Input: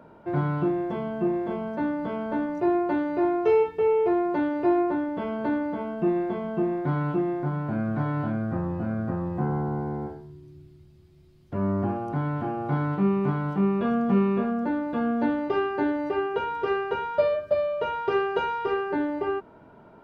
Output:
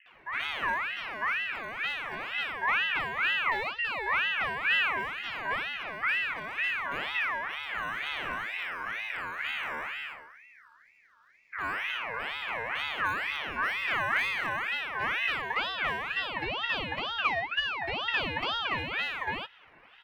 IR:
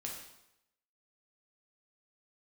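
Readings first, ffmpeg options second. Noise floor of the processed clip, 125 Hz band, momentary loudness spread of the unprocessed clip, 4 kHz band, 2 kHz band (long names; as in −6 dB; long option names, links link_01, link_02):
−58 dBFS, −19.5 dB, 6 LU, can't be measured, +10.5 dB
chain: -filter_complex "[0:a]lowpass=3600,equalizer=frequency=120:width_type=o:width=1.1:gain=-12,acrossover=split=190[link_01][link_02];[link_01]acrusher=samples=16:mix=1:aa=0.000001:lfo=1:lforange=9.6:lforate=0.65[link_03];[link_03][link_02]amix=inputs=2:normalize=0,acrossover=split=500[link_04][link_05];[link_05]adelay=60[link_06];[link_04][link_06]amix=inputs=2:normalize=0,aeval=exprs='val(0)*sin(2*PI*1800*n/s+1800*0.3/2.1*sin(2*PI*2.1*n/s))':channel_layout=same"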